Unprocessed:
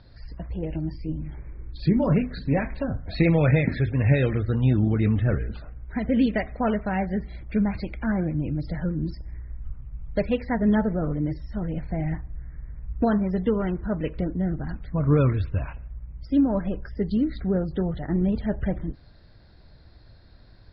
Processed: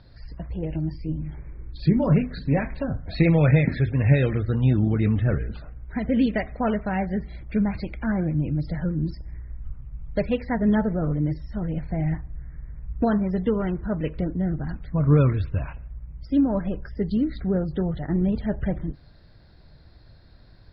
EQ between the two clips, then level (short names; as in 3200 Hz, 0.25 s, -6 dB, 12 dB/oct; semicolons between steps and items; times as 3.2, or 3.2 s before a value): bell 150 Hz +4 dB 0.26 oct; 0.0 dB